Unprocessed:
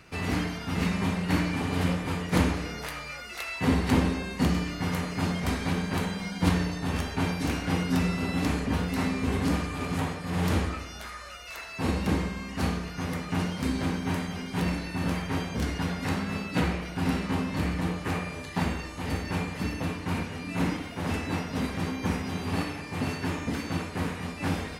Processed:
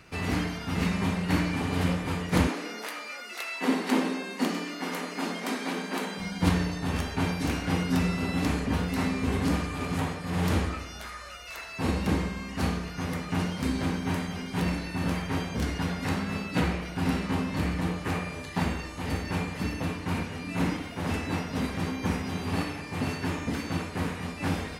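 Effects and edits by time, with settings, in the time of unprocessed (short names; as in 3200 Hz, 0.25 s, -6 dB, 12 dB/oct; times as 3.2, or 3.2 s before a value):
2.47–6.18 steep high-pass 210 Hz 48 dB/oct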